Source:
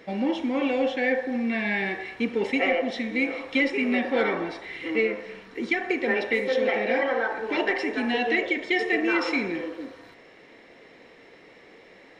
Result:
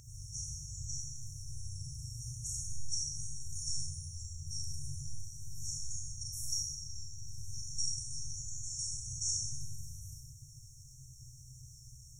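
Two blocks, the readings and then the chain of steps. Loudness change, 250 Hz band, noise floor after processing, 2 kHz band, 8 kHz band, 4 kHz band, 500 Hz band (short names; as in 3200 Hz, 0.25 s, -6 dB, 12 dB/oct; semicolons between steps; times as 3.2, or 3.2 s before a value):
-14.0 dB, under -30 dB, -54 dBFS, under -40 dB, n/a, -6.0 dB, under -40 dB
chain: Schroeder reverb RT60 0.92 s, combs from 32 ms, DRR -2 dB; FFT band-reject 150–5500 Hz; gain +15 dB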